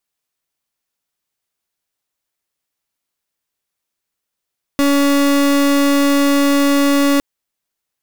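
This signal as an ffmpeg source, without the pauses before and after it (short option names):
-f lavfi -i "aevalsrc='0.224*(2*lt(mod(282*t,1),0.36)-1)':d=2.41:s=44100"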